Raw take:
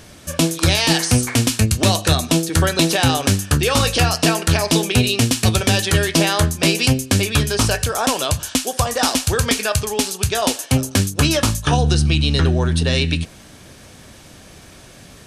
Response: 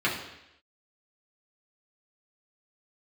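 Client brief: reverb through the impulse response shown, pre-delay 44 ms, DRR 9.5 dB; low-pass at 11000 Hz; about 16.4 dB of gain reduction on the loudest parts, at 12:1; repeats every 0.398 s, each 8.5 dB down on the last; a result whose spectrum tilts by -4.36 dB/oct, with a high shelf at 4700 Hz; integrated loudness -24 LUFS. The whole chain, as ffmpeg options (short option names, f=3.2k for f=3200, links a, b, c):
-filter_complex "[0:a]lowpass=11k,highshelf=f=4.7k:g=-5,acompressor=threshold=-28dB:ratio=12,aecho=1:1:398|796|1194|1592:0.376|0.143|0.0543|0.0206,asplit=2[a][b];[1:a]atrim=start_sample=2205,adelay=44[c];[b][c]afir=irnorm=-1:irlink=0,volume=-22.5dB[d];[a][d]amix=inputs=2:normalize=0,volume=7.5dB"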